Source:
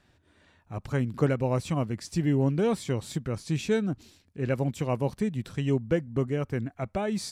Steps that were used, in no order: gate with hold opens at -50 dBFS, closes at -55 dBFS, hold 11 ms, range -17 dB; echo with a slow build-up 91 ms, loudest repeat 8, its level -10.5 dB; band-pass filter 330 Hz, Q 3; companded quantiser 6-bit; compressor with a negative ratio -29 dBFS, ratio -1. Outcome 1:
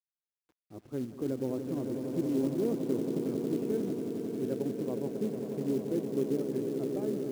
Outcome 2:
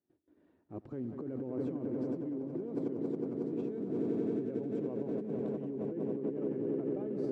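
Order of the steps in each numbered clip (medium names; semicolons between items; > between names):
gate with hold > band-pass filter > compressor with a negative ratio > echo with a slow build-up > companded quantiser; echo with a slow build-up > compressor with a negative ratio > companded quantiser > gate with hold > band-pass filter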